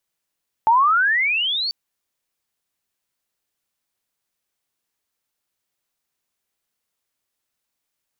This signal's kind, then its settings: gliding synth tone sine, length 1.04 s, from 867 Hz, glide +29 st, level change -10 dB, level -11 dB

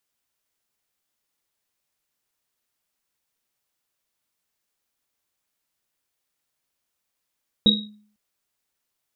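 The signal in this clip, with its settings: Risset drum length 0.50 s, pitch 210 Hz, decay 0.55 s, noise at 3800 Hz, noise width 100 Hz, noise 65%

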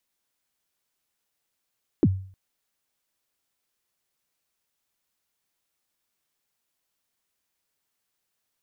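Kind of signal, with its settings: kick drum length 0.31 s, from 390 Hz, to 95 Hz, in 45 ms, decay 0.48 s, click off, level -12 dB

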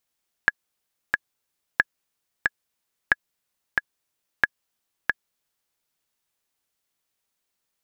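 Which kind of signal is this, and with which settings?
metronome 91 bpm, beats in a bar 2, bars 4, 1680 Hz, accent 3.5 dB -3 dBFS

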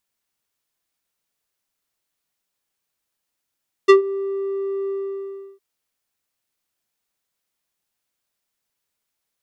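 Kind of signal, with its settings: synth note square G4 12 dB/oct, low-pass 560 Hz, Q 0.75, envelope 3.5 oct, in 0.09 s, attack 18 ms, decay 0.12 s, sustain -16.5 dB, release 0.70 s, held 1.01 s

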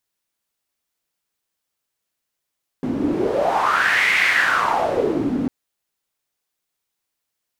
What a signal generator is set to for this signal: wind-like swept noise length 2.65 s, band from 250 Hz, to 2100 Hz, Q 5.3, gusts 1, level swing 4 dB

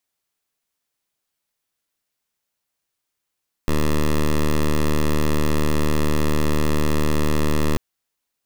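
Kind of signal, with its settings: pulse 75.7 Hz, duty 10% -17.5 dBFS 4.09 s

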